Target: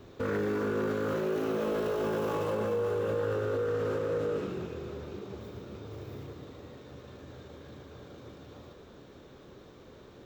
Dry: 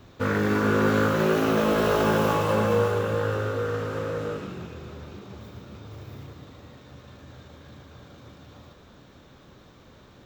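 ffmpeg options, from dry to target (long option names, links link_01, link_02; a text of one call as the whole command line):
ffmpeg -i in.wav -af "equalizer=frequency=410:width=1.6:gain=9,alimiter=limit=-20dB:level=0:latency=1:release=49,volume=-3.5dB" out.wav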